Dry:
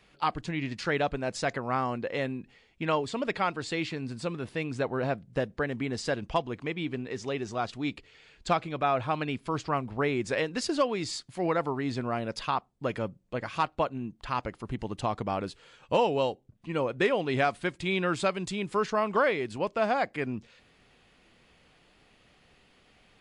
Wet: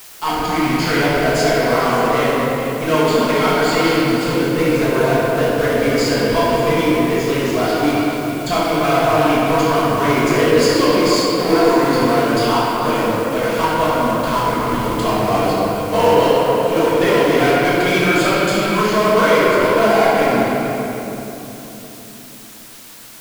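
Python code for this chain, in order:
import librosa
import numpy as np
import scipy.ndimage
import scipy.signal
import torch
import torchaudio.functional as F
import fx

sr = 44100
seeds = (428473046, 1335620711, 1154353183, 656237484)

p1 = fx.ripple_eq(x, sr, per_octave=1.8, db=7)
p2 = fx.quant_float(p1, sr, bits=2)
p3 = fx.fuzz(p2, sr, gain_db=36.0, gate_db=-43.0)
p4 = p2 + (p3 * librosa.db_to_amplitude(-10.0))
p5 = fx.room_shoebox(p4, sr, seeds[0], volume_m3=220.0, walls='hard', distance_m=1.5)
p6 = fx.quant_dither(p5, sr, seeds[1], bits=6, dither='triangular')
p7 = fx.low_shelf(p6, sr, hz=340.0, db=-4.5)
p8 = p7 + fx.echo_stepped(p7, sr, ms=144, hz=490.0, octaves=1.4, feedback_pct=70, wet_db=-3.5, dry=0)
y = p8 * librosa.db_to_amplitude(-3.0)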